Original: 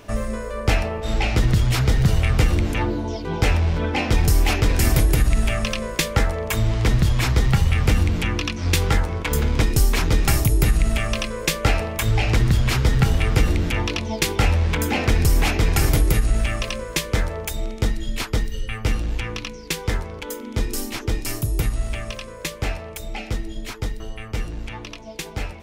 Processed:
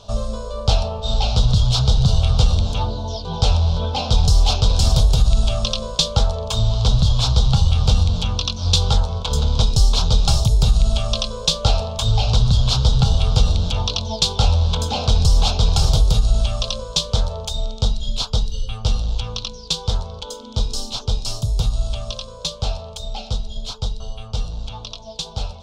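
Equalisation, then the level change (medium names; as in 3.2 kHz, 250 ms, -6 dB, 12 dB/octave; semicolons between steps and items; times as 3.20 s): distance through air 130 m; resonant high shelf 2.9 kHz +8 dB, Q 3; static phaser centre 780 Hz, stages 4; +3.5 dB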